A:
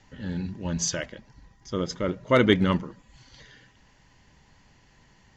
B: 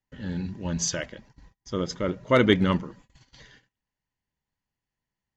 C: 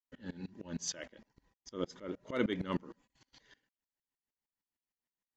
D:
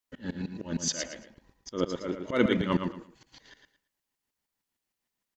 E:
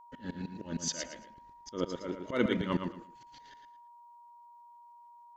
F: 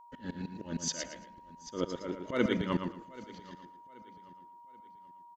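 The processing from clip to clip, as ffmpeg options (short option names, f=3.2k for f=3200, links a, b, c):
-af "agate=range=-30dB:threshold=-51dB:ratio=16:detection=peak"
-af "lowshelf=f=190:t=q:w=1.5:g=-7.5,aeval=exprs='val(0)*pow(10,-23*if(lt(mod(-6.5*n/s,1),2*abs(-6.5)/1000),1-mod(-6.5*n/s,1)/(2*abs(-6.5)/1000),(mod(-6.5*n/s,1)-2*abs(-6.5)/1000)/(1-2*abs(-6.5)/1000))/20)':c=same,volume=-3.5dB"
-af "aecho=1:1:113|226|339:0.473|0.114|0.0273,volume=8dB"
-af "aeval=exprs='val(0)+0.00398*sin(2*PI*950*n/s)':c=same,volume=-4.5dB"
-af "aecho=1:1:781|1562|2343:0.106|0.0403|0.0153"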